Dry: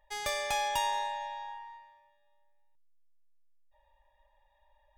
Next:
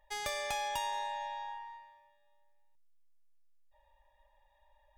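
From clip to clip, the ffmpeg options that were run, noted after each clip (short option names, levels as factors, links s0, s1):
-af "acompressor=threshold=0.0178:ratio=2.5"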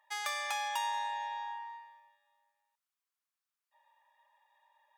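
-af "highpass=f=1100:t=q:w=1.9"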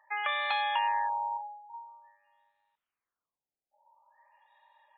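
-af "afftfilt=real='re*lt(b*sr/1024,840*pow(4300/840,0.5+0.5*sin(2*PI*0.48*pts/sr)))':imag='im*lt(b*sr/1024,840*pow(4300/840,0.5+0.5*sin(2*PI*0.48*pts/sr)))':win_size=1024:overlap=0.75,volume=2"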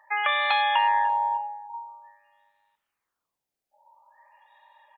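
-af "aecho=1:1:295|590:0.0668|0.0187,volume=2.24"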